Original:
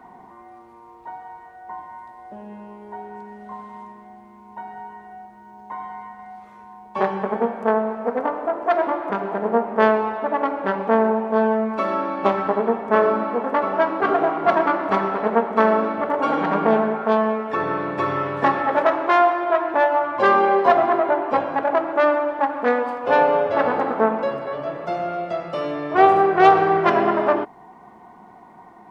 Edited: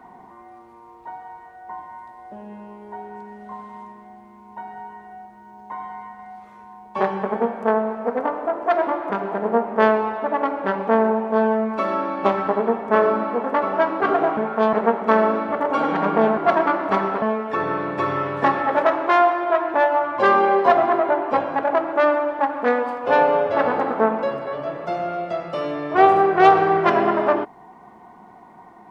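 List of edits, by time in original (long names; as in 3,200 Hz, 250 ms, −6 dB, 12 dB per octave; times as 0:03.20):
0:14.37–0:15.22: swap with 0:16.86–0:17.22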